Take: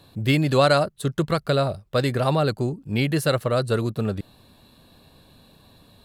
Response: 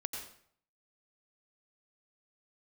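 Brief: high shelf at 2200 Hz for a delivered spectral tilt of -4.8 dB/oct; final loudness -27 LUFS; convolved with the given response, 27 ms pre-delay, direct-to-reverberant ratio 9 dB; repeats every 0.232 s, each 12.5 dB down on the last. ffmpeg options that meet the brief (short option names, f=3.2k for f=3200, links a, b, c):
-filter_complex "[0:a]highshelf=f=2.2k:g=3,aecho=1:1:232|464|696:0.237|0.0569|0.0137,asplit=2[a][b];[1:a]atrim=start_sample=2205,adelay=27[c];[b][c]afir=irnorm=-1:irlink=0,volume=-9.5dB[d];[a][d]amix=inputs=2:normalize=0,volume=-5.5dB"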